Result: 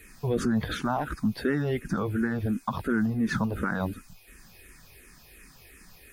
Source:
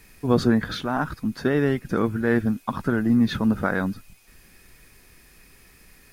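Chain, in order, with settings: one diode to ground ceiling -6 dBFS; limiter -18 dBFS, peak gain reduction 9 dB; endless phaser -2.8 Hz; gain +3.5 dB

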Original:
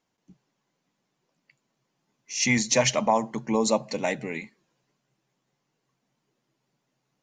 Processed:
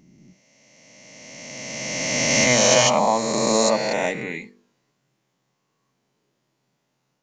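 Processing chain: spectral swells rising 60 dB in 2.73 s; de-hum 48.44 Hz, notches 10

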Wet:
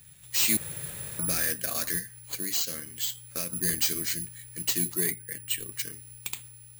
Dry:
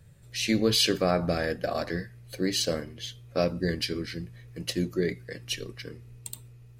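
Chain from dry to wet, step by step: passive tone stack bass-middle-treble 6-0-2; 0.57–1.19 room tone; 1.98–3.53 compressor 3:1, threshold -53 dBFS, peak gain reduction 10.5 dB; 5.11–5.72 air absorption 320 m; overdrive pedal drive 21 dB, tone 5900 Hz, clips at -27.5 dBFS; careless resampling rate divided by 4×, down none, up zero stuff; gain +8 dB

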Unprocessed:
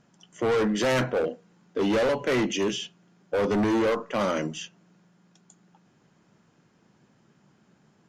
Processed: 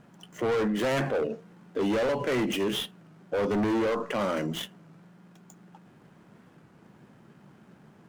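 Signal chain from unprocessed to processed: median filter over 9 samples; limiter -30 dBFS, peak gain reduction 11.5 dB; record warp 33 1/3 rpm, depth 160 cents; gain +7.5 dB

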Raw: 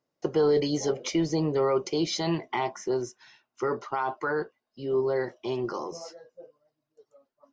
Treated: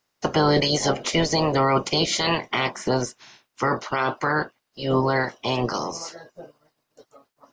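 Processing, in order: spectral limiter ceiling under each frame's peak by 19 dB; in parallel at +1.5 dB: limiter -19.5 dBFS, peak gain reduction 9.5 dB

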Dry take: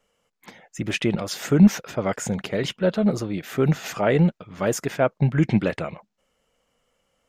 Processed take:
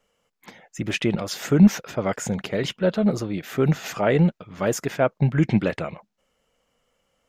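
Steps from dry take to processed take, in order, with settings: bell 8900 Hz -3 dB 0.27 oct

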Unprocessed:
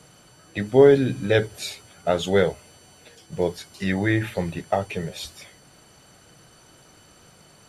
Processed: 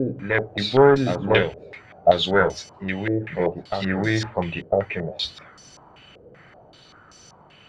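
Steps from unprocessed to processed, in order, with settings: one diode to ground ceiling -14 dBFS; reverse echo 1.002 s -4 dB; stepped low-pass 5.2 Hz 490–5600 Hz

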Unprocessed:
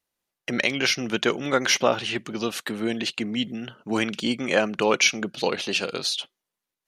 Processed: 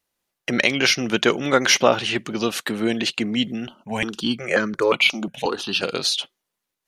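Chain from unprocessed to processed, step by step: 3.67–5.83 step phaser 5.6 Hz 460–2700 Hz; gain +4.5 dB

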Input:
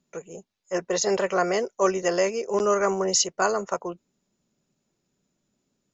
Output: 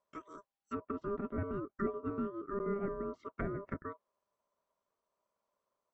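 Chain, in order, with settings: LPF 2200 Hz 6 dB/oct; ring modulator 800 Hz; treble ducked by the level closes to 670 Hz, closed at -26 dBFS; gain -7.5 dB

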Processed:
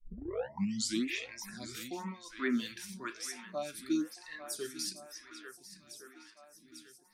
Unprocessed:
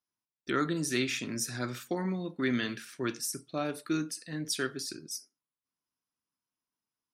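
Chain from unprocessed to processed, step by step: tape start at the beginning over 1.07 s; spectral noise reduction 16 dB; on a send: swung echo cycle 1.409 s, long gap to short 1.5:1, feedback 47%, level -14.5 dB; on the sum: photocell phaser 1 Hz; gain +1.5 dB

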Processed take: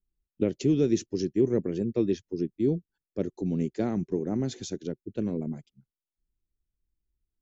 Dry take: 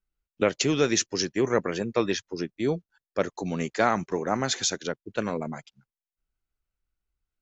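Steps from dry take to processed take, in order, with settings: EQ curve 370 Hz 0 dB, 530 Hz -11 dB, 1200 Hz -25 dB, 2900 Hz -17 dB; gain +2.5 dB

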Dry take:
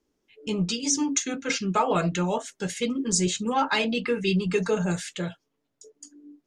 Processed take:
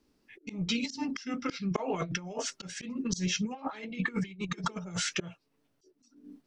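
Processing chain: auto swell 0.403 s; negative-ratio compressor -32 dBFS, ratio -0.5; formant shift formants -3 st

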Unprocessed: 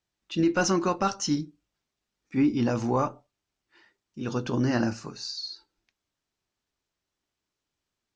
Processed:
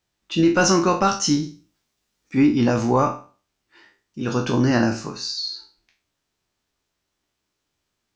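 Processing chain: spectral trails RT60 0.38 s; 1.43–2.47 high shelf 5100 Hz +6 dB; gain +6 dB

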